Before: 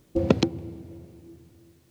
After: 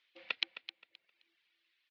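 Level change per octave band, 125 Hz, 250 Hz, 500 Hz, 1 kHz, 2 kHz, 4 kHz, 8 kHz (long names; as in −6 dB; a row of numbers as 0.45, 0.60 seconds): below −40 dB, below −40 dB, −32.0 dB, −17.0 dB, −0.5 dB, −2.5 dB, can't be measured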